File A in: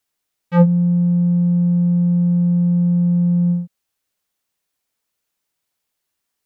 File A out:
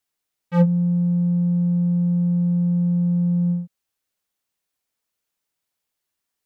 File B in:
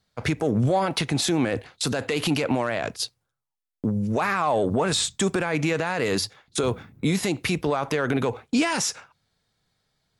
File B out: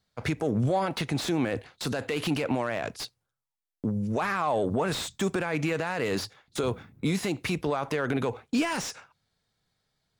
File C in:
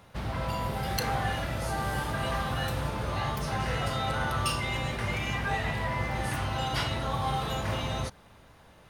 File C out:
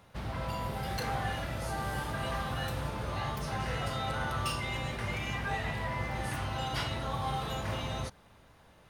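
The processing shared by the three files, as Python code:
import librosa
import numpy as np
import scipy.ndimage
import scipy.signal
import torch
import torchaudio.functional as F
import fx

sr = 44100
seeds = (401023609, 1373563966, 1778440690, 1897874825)

y = fx.slew_limit(x, sr, full_power_hz=190.0)
y = y * 10.0 ** (-4.0 / 20.0)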